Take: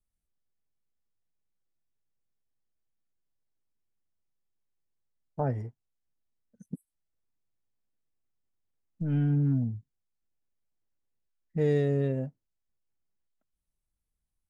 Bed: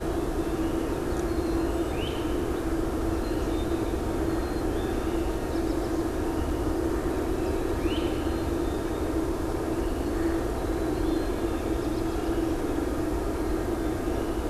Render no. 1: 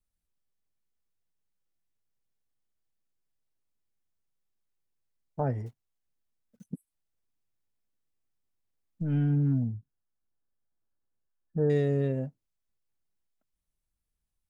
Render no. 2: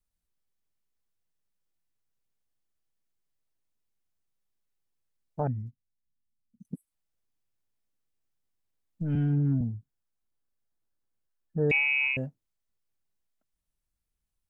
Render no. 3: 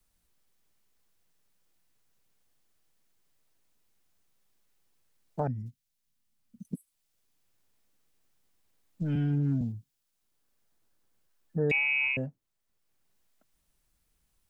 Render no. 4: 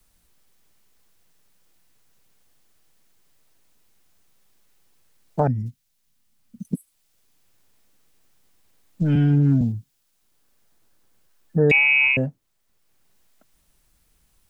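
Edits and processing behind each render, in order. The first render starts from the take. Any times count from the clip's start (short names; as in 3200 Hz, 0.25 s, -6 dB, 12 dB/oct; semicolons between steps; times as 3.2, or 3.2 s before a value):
5.66–6.66 block floating point 5-bit; 9.72–11.7 brick-wall FIR low-pass 1800 Hz
5.47–6.65 EQ curve 260 Hz 0 dB, 380 Hz -23 dB, 710 Hz -28 dB, 4000 Hz -19 dB; 9.15–9.61 three-band expander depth 40%; 11.71–12.17 inverted band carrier 2700 Hz
three-band squash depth 40%
gain +10.5 dB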